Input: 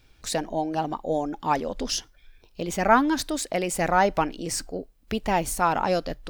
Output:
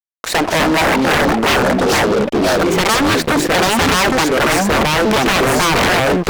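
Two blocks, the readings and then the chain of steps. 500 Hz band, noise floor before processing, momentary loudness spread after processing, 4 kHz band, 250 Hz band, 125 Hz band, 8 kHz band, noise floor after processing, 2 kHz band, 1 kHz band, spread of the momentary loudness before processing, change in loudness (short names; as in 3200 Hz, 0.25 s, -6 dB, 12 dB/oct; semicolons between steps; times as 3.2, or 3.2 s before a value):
+12.0 dB, -59 dBFS, 2 LU, +17.0 dB, +12.5 dB, +14.5 dB, +11.0 dB, -25 dBFS, +16.5 dB, +9.0 dB, 10 LU, +12.0 dB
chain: spectral delete 0.84–2.34, 1000–2600 Hz; three-band isolator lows -23 dB, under 270 Hz, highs -17 dB, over 2300 Hz; compressor 2:1, threshold -27 dBFS, peak gain reduction 8.5 dB; echoes that change speed 0.189 s, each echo -3 st, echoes 3; added harmonics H 7 -10 dB, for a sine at -13.5 dBFS; fuzz box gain 38 dB, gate -45 dBFS; gain +2 dB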